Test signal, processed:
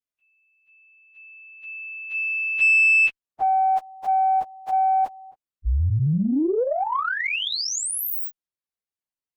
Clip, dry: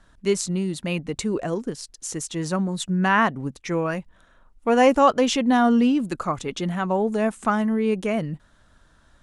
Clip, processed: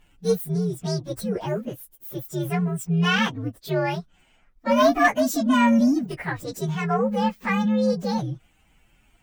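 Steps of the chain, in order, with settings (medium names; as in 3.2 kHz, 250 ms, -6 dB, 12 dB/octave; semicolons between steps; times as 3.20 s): frequency axis rescaled in octaves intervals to 129%; Chebyshev shaper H 2 -20 dB, 4 -41 dB, 5 -27 dB, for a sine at -6.5 dBFS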